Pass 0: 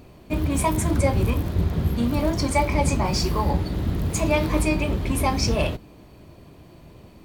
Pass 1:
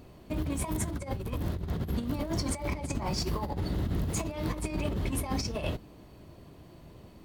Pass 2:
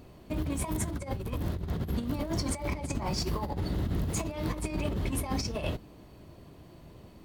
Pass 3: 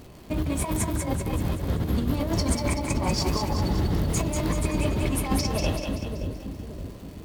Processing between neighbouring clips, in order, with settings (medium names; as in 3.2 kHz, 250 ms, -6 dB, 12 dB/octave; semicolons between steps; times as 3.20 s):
band-stop 2.4 kHz, Q 18; compressor with a negative ratio -24 dBFS, ratio -0.5; trim -7 dB
no audible change
crackle 290 per s -46 dBFS; two-band feedback delay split 500 Hz, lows 571 ms, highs 191 ms, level -4.5 dB; trim +5 dB